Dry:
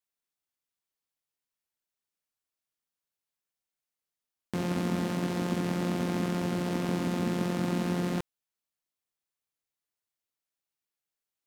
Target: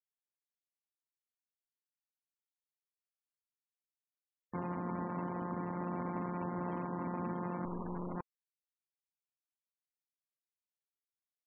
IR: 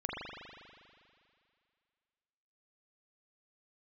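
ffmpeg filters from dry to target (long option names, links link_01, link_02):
-filter_complex "[0:a]asettb=1/sr,asplit=3[link_01][link_02][link_03];[link_01]atrim=end=7.654[link_04];[link_02]atrim=start=7.65:end=8.16,asetpts=PTS-STARTPTS,afade=type=in:duration=0.004:curve=qsin,afade=type=out:start_time=0.506:duration=0.004:curve=qsin,aeval=exprs='0.126*(cos(1*acos(clip(val(0)/0.126,-1,1)))-cos(1*PI/2))+0.0355*(cos(4*acos(clip(val(0)/0.126,-1,1)))-cos(4*PI/2))':channel_layout=same[link_05];[link_03]atrim=start=8.156[link_06];[link_04][link_05]acrossfade=duration=0.004:curve1=hsin:curve2=qsin[link_07];[link_07][link_06]acrossfade=duration=0.004:curve1=qsin:curve2=hsin,alimiter=level_in=3dB:limit=-24dB:level=0:latency=1:release=45,volume=-3dB,equalizer=frequency=1000:width_type=o:width=0.63:gain=11.5,afftfilt=real='re*gte(hypot(re,im),0.0126)':imag='im*gte(hypot(re,im),0.0126)':win_size=1024:overlap=0.75,volume=-4.5dB"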